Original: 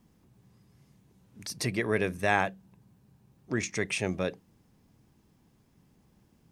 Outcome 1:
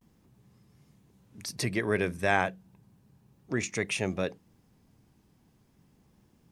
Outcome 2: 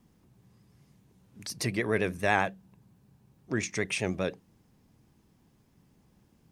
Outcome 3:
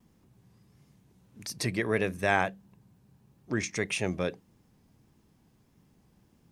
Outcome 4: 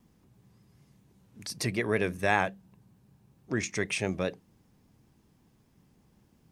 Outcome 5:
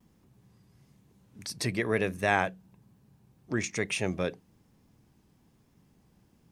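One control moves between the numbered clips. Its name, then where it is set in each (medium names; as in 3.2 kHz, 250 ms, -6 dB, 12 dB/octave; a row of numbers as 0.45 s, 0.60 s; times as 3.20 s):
vibrato, rate: 0.34 Hz, 10 Hz, 1.6 Hz, 5.2 Hz, 1.1 Hz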